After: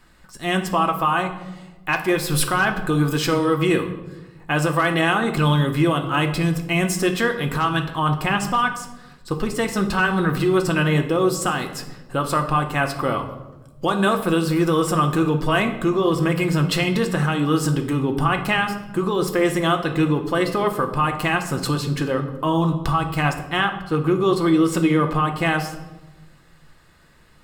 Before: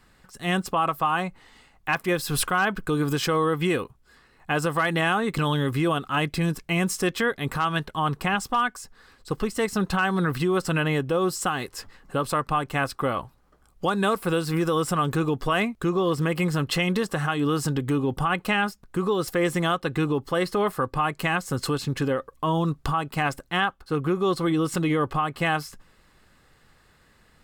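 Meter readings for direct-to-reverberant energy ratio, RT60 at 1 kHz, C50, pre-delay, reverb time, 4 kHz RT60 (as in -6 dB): 4.0 dB, 0.95 s, 10.0 dB, 3 ms, 1.1 s, 0.70 s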